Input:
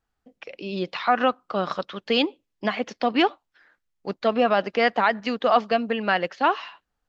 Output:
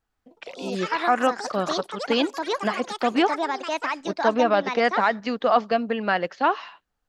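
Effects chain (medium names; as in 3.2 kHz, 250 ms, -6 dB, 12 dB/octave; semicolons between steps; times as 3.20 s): ever faster or slower copies 111 ms, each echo +5 st, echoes 3, each echo -6 dB; dynamic bell 2.8 kHz, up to -4 dB, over -41 dBFS, Q 1.5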